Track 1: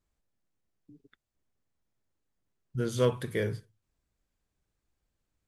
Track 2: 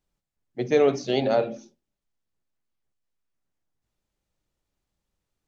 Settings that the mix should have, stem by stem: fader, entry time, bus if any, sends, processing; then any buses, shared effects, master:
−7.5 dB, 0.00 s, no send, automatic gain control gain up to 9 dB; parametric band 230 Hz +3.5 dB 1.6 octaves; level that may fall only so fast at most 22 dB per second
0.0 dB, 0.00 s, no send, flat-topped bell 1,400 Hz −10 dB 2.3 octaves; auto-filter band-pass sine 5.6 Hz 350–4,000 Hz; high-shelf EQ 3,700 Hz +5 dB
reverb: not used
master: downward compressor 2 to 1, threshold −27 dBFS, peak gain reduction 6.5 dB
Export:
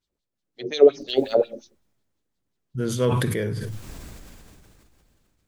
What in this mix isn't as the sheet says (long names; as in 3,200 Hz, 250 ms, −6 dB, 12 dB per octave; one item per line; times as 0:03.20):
stem 2 0.0 dB → +10.5 dB
master: missing downward compressor 2 to 1, threshold −27 dBFS, peak gain reduction 6.5 dB